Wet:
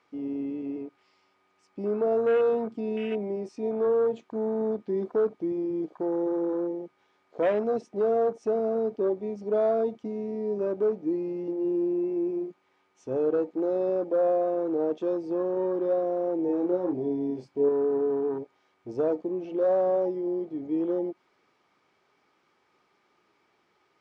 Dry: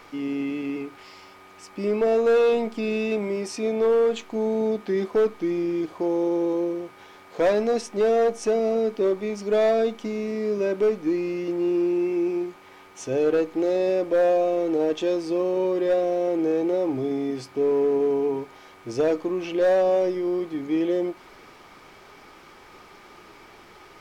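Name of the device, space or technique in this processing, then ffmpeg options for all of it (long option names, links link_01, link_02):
over-cleaned archive recording: -filter_complex "[0:a]highpass=110,lowpass=7400,afwtdn=0.0282,asettb=1/sr,asplit=3[link_01][link_02][link_03];[link_01]atrim=end=16.464[link_04];[link_02]atrim=start=16.46:end=17.69,asetpts=PTS-STARTPTS,afade=type=in:duration=0.004:curve=qsin,afade=type=out:start_time=1.226:duration=0.004:curve=qsin,asplit=2[link_05][link_06];[link_06]adelay=28,volume=-5dB[link_07];[link_05][link_07]amix=inputs=2:normalize=0,atrim=end_sample=54243[link_08];[link_03]atrim=start=17.686[link_09];[link_04][link_08]acrossfade=duration=0.004:curve1=hsin:curve2=qsin[link_10];[link_10][link_09]acrossfade=duration=0.004:curve1=qsin:curve2=hsin,volume=-4dB"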